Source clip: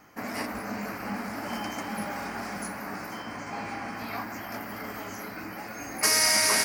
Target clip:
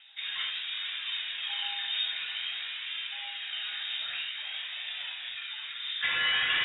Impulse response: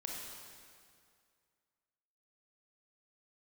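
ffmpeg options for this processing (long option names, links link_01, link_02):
-filter_complex "[0:a]bandreject=frequency=95.25:width_type=h:width=4,bandreject=frequency=190.5:width_type=h:width=4,bandreject=frequency=285.75:width_type=h:width=4,bandreject=frequency=381:width_type=h:width=4,bandreject=frequency=476.25:width_type=h:width=4,bandreject=frequency=571.5:width_type=h:width=4,bandreject=frequency=666.75:width_type=h:width=4,bandreject=frequency=762:width_type=h:width=4,bandreject=frequency=857.25:width_type=h:width=4,bandreject=frequency=952.5:width_type=h:width=4,bandreject=frequency=1047.75:width_type=h:width=4,bandreject=frequency=1143:width_type=h:width=4,bandreject=frequency=1238.25:width_type=h:width=4,bandreject=frequency=1333.5:width_type=h:width=4,bandreject=frequency=1428.75:width_type=h:width=4,bandreject=frequency=1524:width_type=h:width=4,bandreject=frequency=1619.25:width_type=h:width=4,bandreject=frequency=1714.5:width_type=h:width=4,bandreject=frequency=1809.75:width_type=h:width=4,bandreject=frequency=1905:width_type=h:width=4,bandreject=frequency=2000.25:width_type=h:width=4,bandreject=frequency=2095.5:width_type=h:width=4,bandreject=frequency=2190.75:width_type=h:width=4,bandreject=frequency=2286:width_type=h:width=4,bandreject=frequency=2381.25:width_type=h:width=4,bandreject=frequency=2476.5:width_type=h:width=4,bandreject=frequency=2571.75:width_type=h:width=4,bandreject=frequency=2667:width_type=h:width=4,bandreject=frequency=2762.25:width_type=h:width=4,bandreject=frequency=2857.5:width_type=h:width=4,bandreject=frequency=2952.75:width_type=h:width=4,bandreject=frequency=3048:width_type=h:width=4,bandreject=frequency=3143.25:width_type=h:width=4,bandreject=frequency=3238.5:width_type=h:width=4,aphaser=in_gain=1:out_gain=1:delay=2.8:decay=0.41:speed=0.51:type=triangular[link_01];[1:a]atrim=start_sample=2205,atrim=end_sample=4410[link_02];[link_01][link_02]afir=irnorm=-1:irlink=0,lowpass=frequency=3300:width_type=q:width=0.5098,lowpass=frequency=3300:width_type=q:width=0.6013,lowpass=frequency=3300:width_type=q:width=0.9,lowpass=frequency=3300:width_type=q:width=2.563,afreqshift=-3900,volume=1.5dB"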